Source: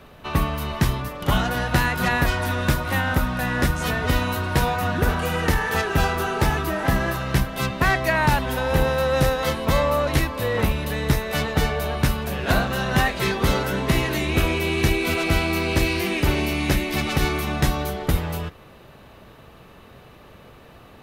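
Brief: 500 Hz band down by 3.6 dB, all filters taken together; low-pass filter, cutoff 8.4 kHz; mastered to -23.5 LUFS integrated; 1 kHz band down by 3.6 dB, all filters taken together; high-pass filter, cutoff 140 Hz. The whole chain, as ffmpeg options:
-af "highpass=140,lowpass=8400,equalizer=f=500:t=o:g=-3.5,equalizer=f=1000:t=o:g=-3.5,volume=1.26"

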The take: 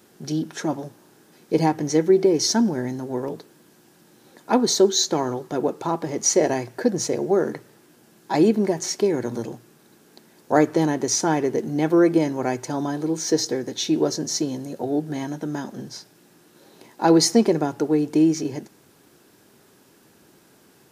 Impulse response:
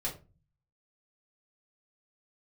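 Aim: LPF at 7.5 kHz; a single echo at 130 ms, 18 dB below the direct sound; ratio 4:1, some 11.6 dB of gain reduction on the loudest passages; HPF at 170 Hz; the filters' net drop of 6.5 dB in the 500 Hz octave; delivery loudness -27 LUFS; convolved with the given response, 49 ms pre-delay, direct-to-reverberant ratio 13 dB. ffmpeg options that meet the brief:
-filter_complex "[0:a]highpass=170,lowpass=7500,equalizer=f=500:t=o:g=-9,acompressor=threshold=0.0282:ratio=4,aecho=1:1:130:0.126,asplit=2[s0][s1];[1:a]atrim=start_sample=2205,adelay=49[s2];[s1][s2]afir=irnorm=-1:irlink=0,volume=0.158[s3];[s0][s3]amix=inputs=2:normalize=0,volume=2.24"

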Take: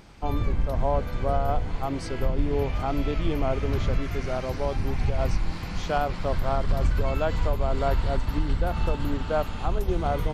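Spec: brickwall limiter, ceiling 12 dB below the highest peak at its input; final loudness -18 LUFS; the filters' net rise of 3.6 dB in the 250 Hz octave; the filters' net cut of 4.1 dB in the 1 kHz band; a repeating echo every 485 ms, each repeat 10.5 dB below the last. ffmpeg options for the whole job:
-af "equalizer=f=250:t=o:g=5,equalizer=f=1000:t=o:g=-7,alimiter=limit=0.0668:level=0:latency=1,aecho=1:1:485|970|1455:0.299|0.0896|0.0269,volume=5.62"

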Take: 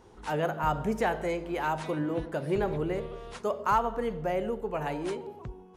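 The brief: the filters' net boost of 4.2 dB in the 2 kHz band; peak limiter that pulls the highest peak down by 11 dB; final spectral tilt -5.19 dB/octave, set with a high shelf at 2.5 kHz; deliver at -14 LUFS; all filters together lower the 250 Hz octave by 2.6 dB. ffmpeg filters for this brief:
-af "equalizer=f=250:t=o:g=-4,equalizer=f=2000:t=o:g=8.5,highshelf=f=2500:g=-6.5,volume=10.6,alimiter=limit=0.631:level=0:latency=1"

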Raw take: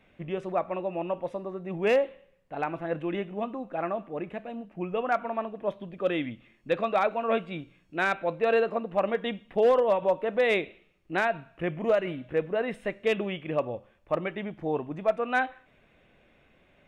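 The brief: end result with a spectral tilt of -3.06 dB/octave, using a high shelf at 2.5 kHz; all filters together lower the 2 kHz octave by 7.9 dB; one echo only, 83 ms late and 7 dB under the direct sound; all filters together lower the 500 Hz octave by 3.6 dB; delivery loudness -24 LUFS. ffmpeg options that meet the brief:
-af "equalizer=f=500:t=o:g=-3.5,equalizer=f=2000:t=o:g=-7,highshelf=f=2500:g=-8,aecho=1:1:83:0.447,volume=2.51"

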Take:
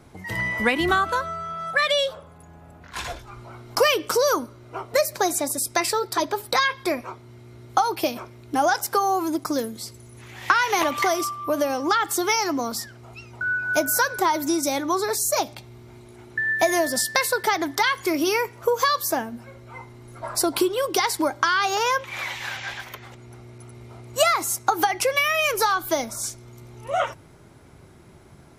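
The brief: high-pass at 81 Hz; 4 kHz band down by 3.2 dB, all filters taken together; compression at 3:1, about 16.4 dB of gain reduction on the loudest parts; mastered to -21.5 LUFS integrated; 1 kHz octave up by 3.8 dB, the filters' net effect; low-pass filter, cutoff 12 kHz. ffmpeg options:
-af "highpass=81,lowpass=12000,equalizer=f=1000:t=o:g=5,equalizer=f=4000:t=o:g=-4.5,acompressor=threshold=0.0158:ratio=3,volume=5.01"

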